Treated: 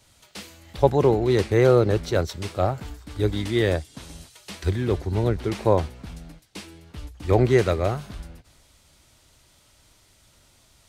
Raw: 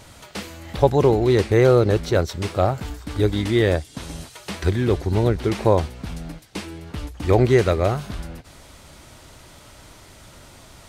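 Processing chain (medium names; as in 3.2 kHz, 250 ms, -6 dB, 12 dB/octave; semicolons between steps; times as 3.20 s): three bands expanded up and down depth 40%; trim -3.5 dB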